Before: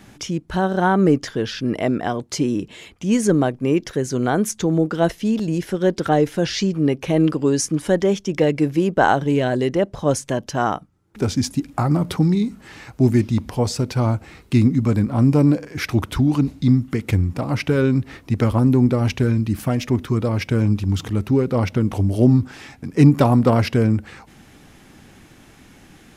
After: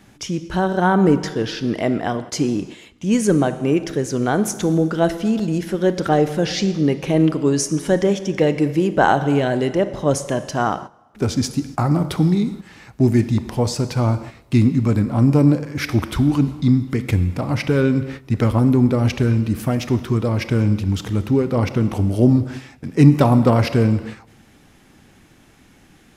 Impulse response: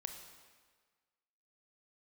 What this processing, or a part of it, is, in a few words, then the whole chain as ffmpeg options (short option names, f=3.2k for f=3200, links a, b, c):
keyed gated reverb: -filter_complex "[0:a]asplit=3[a][b][c];[1:a]atrim=start_sample=2205[d];[b][d]afir=irnorm=-1:irlink=0[e];[c]apad=whole_len=1154062[f];[e][f]sidechaingate=range=-13dB:threshold=-35dB:ratio=16:detection=peak,volume=3.5dB[g];[a][g]amix=inputs=2:normalize=0,volume=-5.5dB"